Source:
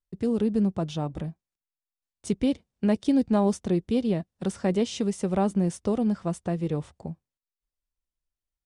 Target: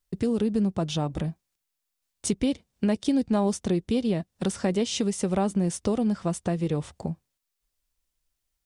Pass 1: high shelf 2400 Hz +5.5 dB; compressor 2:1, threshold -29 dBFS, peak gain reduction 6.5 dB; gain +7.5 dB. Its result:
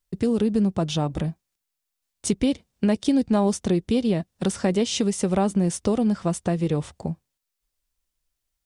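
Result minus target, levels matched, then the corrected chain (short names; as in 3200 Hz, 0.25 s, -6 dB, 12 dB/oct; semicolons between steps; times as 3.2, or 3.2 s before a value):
compressor: peak gain reduction -3 dB
high shelf 2400 Hz +5.5 dB; compressor 2:1, threshold -35.5 dBFS, peak gain reduction 9.5 dB; gain +7.5 dB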